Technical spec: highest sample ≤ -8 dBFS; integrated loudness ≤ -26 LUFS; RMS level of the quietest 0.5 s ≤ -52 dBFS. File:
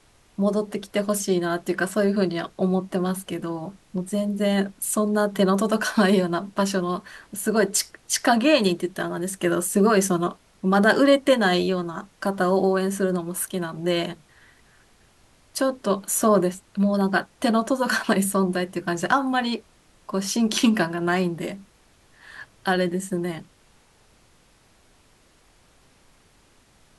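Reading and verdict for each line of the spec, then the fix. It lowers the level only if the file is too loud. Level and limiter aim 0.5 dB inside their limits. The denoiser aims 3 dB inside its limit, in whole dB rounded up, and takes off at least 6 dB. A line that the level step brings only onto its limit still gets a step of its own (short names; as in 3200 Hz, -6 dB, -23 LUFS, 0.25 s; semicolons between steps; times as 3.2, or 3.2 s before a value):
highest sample -6.5 dBFS: fail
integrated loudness -23.0 LUFS: fail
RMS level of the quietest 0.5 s -58 dBFS: OK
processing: gain -3.5 dB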